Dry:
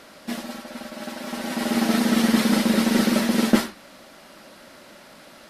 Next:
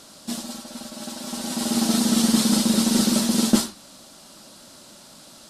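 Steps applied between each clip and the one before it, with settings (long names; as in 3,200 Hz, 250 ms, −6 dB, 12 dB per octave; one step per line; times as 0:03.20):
octave-band graphic EQ 125/500/2,000/4,000/8,000 Hz +3/−5/−11/+4/+10 dB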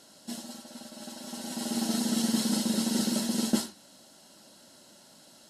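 notch comb filter 1,200 Hz
level −7.5 dB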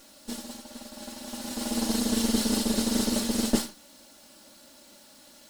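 lower of the sound and its delayed copy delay 3.5 ms
bit reduction 10 bits
level +3 dB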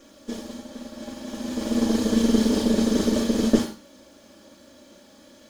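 convolution reverb RT60 0.30 s, pre-delay 34 ms, DRR 7 dB
level −8.5 dB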